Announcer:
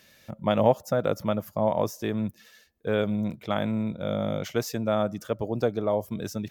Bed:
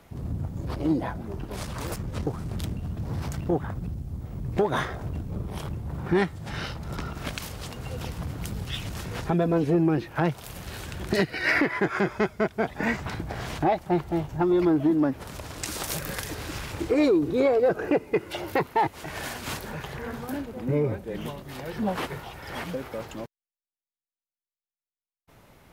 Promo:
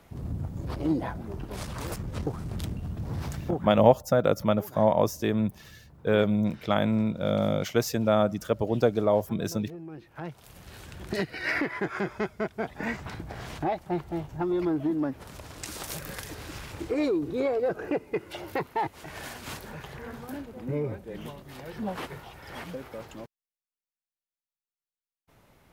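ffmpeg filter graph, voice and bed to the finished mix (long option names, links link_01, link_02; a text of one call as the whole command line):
ffmpeg -i stem1.wav -i stem2.wav -filter_complex "[0:a]adelay=3200,volume=2.5dB[link_01];[1:a]volume=12.5dB,afade=type=out:start_time=3.26:duration=0.79:silence=0.125893,afade=type=in:start_time=9.87:duration=1.42:silence=0.188365[link_02];[link_01][link_02]amix=inputs=2:normalize=0" out.wav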